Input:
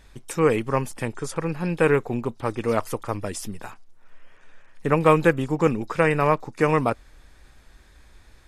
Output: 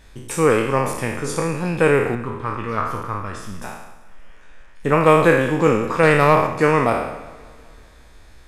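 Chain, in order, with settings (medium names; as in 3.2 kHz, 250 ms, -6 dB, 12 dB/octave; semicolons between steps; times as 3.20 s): spectral sustain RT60 0.90 s; 2.15–3.62 s: FFT filter 100 Hz 0 dB, 700 Hz -12 dB, 1.1 kHz +2 dB, 9.5 kHz -16 dB; 6.03–6.47 s: waveshaping leveller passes 1; modulated delay 192 ms, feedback 61%, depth 68 cents, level -22 dB; trim +2 dB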